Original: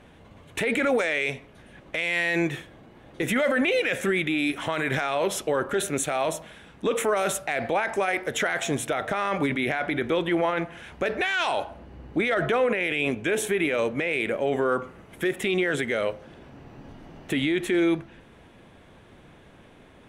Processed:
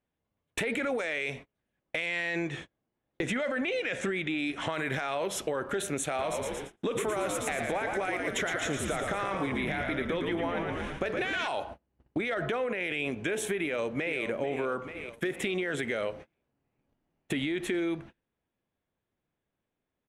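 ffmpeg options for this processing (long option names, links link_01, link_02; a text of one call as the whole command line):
ffmpeg -i in.wav -filter_complex "[0:a]asettb=1/sr,asplit=3[link_01][link_02][link_03];[link_01]atrim=end=2.064[link_04];[link_02]atrim=start=2.06:end=4.69,asetpts=PTS-STARTPTS,afade=type=in:duration=0.004:curve=qsin,afade=type=out:start_time=2.626:duration=0.004:curve=qsin,lowpass=frequency=8500:width=0.5412,lowpass=frequency=8500:width=1.3066[link_05];[link_03]atrim=start=4.686[link_06];[link_04][link_05]acrossfade=duration=0.004:curve1=hsin:curve2=qsin[link_07];[link_07][link_06]acrossfade=duration=0.004:curve1=qsin:curve2=hsin,asettb=1/sr,asplit=3[link_08][link_09][link_10];[link_08]atrim=end=6.074[link_11];[link_09]atrim=start=6.07:end=11.48,asetpts=PTS-STARTPTS,afade=type=in:duration=0.004:curve=qsin,afade=type=out:start_time=5.406:duration=0.004:curve=qsin,asplit=8[link_12][link_13][link_14][link_15][link_16][link_17][link_18][link_19];[link_13]adelay=114,afreqshift=-63,volume=-4.5dB[link_20];[link_14]adelay=228,afreqshift=-126,volume=-10dB[link_21];[link_15]adelay=342,afreqshift=-189,volume=-15.5dB[link_22];[link_16]adelay=456,afreqshift=-252,volume=-21dB[link_23];[link_17]adelay=570,afreqshift=-315,volume=-26.6dB[link_24];[link_18]adelay=684,afreqshift=-378,volume=-32.1dB[link_25];[link_19]adelay=798,afreqshift=-441,volume=-37.6dB[link_26];[link_12][link_20][link_21][link_22][link_23][link_24][link_25][link_26]amix=inputs=8:normalize=0,atrim=end_sample=238581[link_27];[link_10]atrim=start=11.476[link_28];[link_11][link_27]acrossfade=duration=0.004:curve1=hsin:curve2=qsin[link_29];[link_29][link_28]acrossfade=duration=0.004:curve1=qsin:curve2=hsin,asplit=2[link_30][link_31];[link_31]afade=type=in:start_time=13.62:duration=0.01,afade=type=out:start_time=14.21:duration=0.01,aecho=0:1:440|880|1320|1760|2200|2640|3080:0.316228|0.189737|0.113842|0.0683052|0.0409831|0.0245899|0.0147539[link_32];[link_30][link_32]amix=inputs=2:normalize=0,lowpass=12000,agate=range=-34dB:threshold=-38dB:ratio=16:detection=peak,acompressor=threshold=-28dB:ratio=6" out.wav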